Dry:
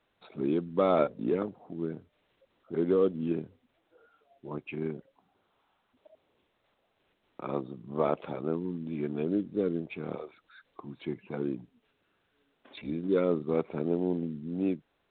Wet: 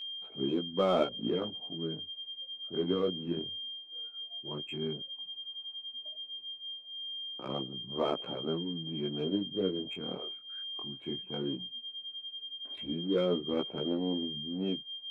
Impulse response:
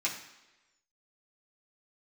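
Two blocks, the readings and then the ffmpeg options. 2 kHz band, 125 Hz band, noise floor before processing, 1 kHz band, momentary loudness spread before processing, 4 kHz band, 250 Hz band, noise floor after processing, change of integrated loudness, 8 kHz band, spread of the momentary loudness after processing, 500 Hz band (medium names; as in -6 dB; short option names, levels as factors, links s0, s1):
-3.5 dB, -3.0 dB, -75 dBFS, -3.0 dB, 16 LU, +22.0 dB, -3.0 dB, -51 dBFS, -3.5 dB, no reading, 9 LU, -3.5 dB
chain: -af "adynamicsmooth=sensitivity=7.5:basefreq=1700,aeval=exprs='val(0)+0.0141*sin(2*PI*3200*n/s)':c=same,flanger=delay=15:depth=7.8:speed=0.14"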